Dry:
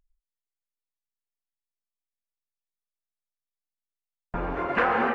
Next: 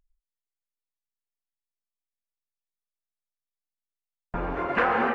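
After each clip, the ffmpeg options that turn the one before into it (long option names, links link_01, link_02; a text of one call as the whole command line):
ffmpeg -i in.wav -af anull out.wav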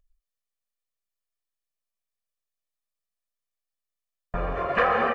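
ffmpeg -i in.wav -af "aecho=1:1:1.7:0.65" out.wav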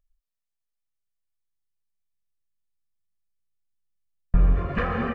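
ffmpeg -i in.wav -af "asubboost=boost=11:cutoff=200,volume=-5dB" out.wav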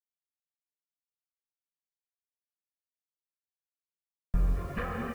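ffmpeg -i in.wav -af "acrusher=bits=7:mix=0:aa=0.000001,volume=-8.5dB" out.wav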